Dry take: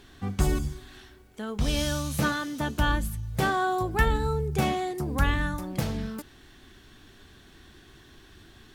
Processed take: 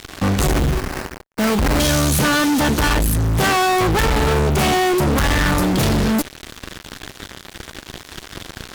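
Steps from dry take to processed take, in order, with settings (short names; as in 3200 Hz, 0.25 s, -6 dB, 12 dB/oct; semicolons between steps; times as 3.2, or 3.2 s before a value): fuzz box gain 45 dB, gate -48 dBFS; 0.53–1.8 sample-rate reducer 3500 Hz, jitter 20%; gain -2 dB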